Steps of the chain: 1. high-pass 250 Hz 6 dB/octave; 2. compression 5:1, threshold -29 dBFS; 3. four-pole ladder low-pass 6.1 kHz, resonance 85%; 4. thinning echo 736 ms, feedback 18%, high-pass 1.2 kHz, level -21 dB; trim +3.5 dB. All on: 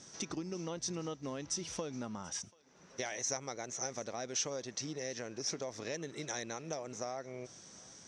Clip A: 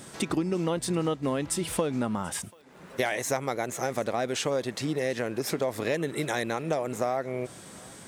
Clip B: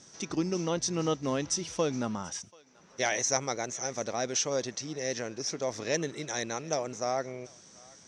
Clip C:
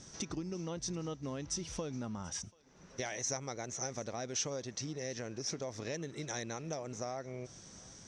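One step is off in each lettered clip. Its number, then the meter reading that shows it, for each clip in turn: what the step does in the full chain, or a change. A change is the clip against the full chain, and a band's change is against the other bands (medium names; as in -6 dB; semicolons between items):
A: 3, 8 kHz band -11.0 dB; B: 2, mean gain reduction 6.5 dB; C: 1, 125 Hz band +5.0 dB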